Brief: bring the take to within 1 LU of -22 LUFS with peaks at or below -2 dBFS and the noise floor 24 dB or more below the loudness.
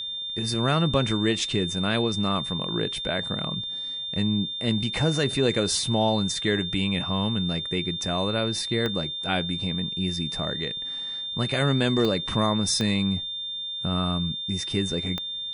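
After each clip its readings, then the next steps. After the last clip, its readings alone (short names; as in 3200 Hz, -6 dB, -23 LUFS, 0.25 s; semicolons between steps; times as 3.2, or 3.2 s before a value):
clicks 4; steady tone 3600 Hz; tone level -30 dBFS; loudness -25.5 LUFS; peak -9.5 dBFS; loudness target -22.0 LUFS
-> de-click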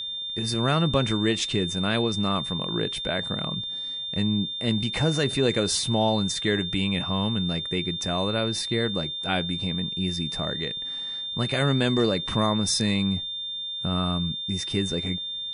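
clicks 0; steady tone 3600 Hz; tone level -30 dBFS
-> notch 3600 Hz, Q 30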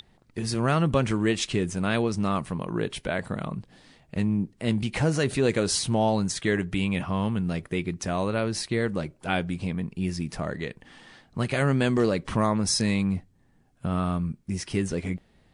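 steady tone none; loudness -27.0 LUFS; peak -9.5 dBFS; loudness target -22.0 LUFS
-> gain +5 dB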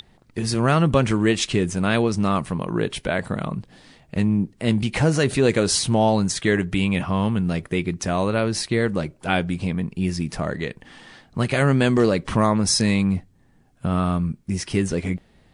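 loudness -22.0 LUFS; peak -4.5 dBFS; noise floor -57 dBFS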